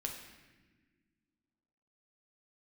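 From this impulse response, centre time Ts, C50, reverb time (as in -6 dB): 38 ms, 5.0 dB, not exponential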